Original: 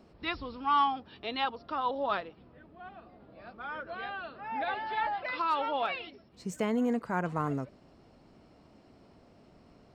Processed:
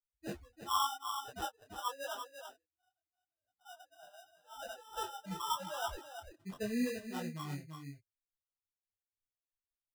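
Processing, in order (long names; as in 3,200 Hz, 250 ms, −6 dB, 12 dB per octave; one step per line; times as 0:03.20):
spectral dynamics exaggerated over time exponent 3
0:03.60–0:04.42: all-pass dispersion lows, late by 126 ms, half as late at 300 Hz
decimation without filtering 20×
single-tap delay 338 ms −8 dB
micro pitch shift up and down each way 30 cents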